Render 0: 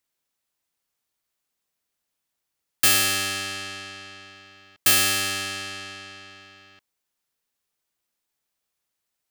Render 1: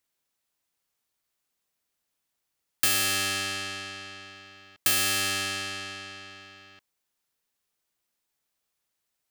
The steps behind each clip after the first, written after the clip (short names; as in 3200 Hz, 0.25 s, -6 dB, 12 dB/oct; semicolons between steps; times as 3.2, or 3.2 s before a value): compressor 2.5:1, threshold -23 dBFS, peak gain reduction 6.5 dB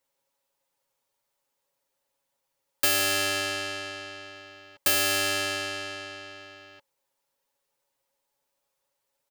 comb 7.3 ms, depth 86%; small resonant body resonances 550/880 Hz, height 15 dB, ringing for 35 ms; gain -2.5 dB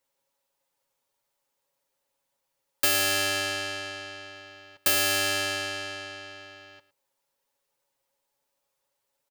echo 0.111 s -17 dB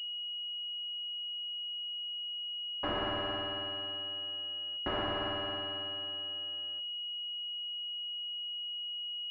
de-hum 66.04 Hz, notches 29; pulse-width modulation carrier 2900 Hz; gain -5.5 dB